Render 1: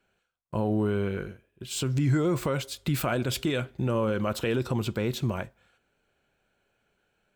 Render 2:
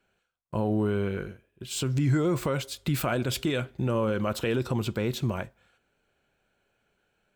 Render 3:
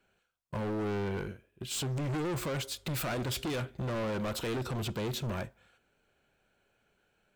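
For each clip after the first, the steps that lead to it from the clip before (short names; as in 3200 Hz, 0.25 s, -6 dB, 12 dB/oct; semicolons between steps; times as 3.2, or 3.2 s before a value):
nothing audible
overloaded stage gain 31.5 dB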